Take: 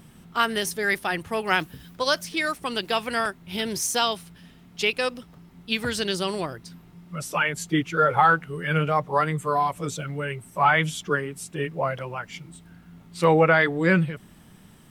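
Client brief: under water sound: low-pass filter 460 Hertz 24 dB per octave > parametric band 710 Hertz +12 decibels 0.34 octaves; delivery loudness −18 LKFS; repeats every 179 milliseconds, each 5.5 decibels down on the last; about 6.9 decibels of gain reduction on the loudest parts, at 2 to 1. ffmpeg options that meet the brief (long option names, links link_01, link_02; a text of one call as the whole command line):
ffmpeg -i in.wav -af "acompressor=threshold=-26dB:ratio=2,lowpass=frequency=460:width=0.5412,lowpass=frequency=460:width=1.3066,equalizer=frequency=710:width_type=o:width=0.34:gain=12,aecho=1:1:179|358|537|716|895|1074|1253:0.531|0.281|0.149|0.079|0.0419|0.0222|0.0118,volume=15dB" out.wav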